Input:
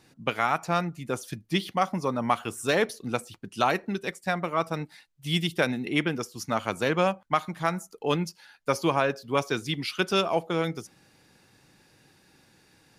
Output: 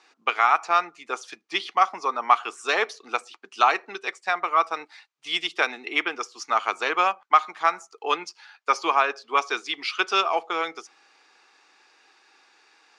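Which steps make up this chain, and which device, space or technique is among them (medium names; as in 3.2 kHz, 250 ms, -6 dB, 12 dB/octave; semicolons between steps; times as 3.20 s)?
phone speaker on a table (cabinet simulation 420–6900 Hz, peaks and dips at 550 Hz -10 dB, 800 Hz +3 dB, 1.2 kHz +8 dB, 2.4 kHz +4 dB); trim +2.5 dB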